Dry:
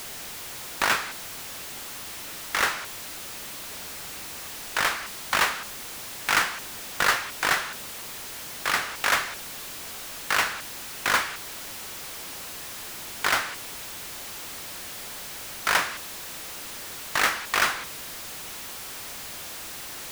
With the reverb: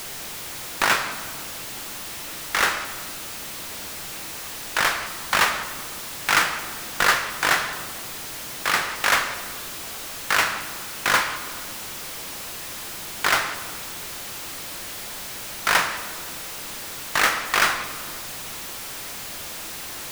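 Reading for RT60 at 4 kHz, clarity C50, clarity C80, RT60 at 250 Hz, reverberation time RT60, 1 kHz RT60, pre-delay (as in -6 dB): 0.95 s, 10.5 dB, 11.5 dB, 3.4 s, 2.2 s, 2.0 s, 5 ms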